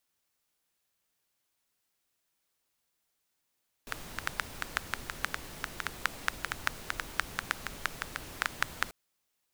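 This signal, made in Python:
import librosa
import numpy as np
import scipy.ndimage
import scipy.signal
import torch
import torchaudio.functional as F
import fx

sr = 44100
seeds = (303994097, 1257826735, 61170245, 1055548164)

y = fx.rain(sr, seeds[0], length_s=5.04, drops_per_s=6.2, hz=1500.0, bed_db=-6)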